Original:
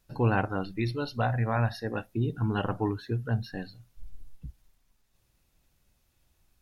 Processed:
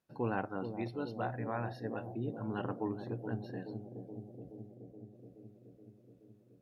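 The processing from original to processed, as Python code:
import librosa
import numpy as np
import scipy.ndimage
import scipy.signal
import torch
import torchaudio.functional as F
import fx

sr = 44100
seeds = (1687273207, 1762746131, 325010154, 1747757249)

y = scipy.signal.sosfilt(scipy.signal.butter(2, 180.0, 'highpass', fs=sr, output='sos'), x)
y = fx.high_shelf(y, sr, hz=2100.0, db=-10.5)
y = fx.echo_bbd(y, sr, ms=424, stages=2048, feedback_pct=73, wet_db=-7.5)
y = y * librosa.db_to_amplitude(-6.5)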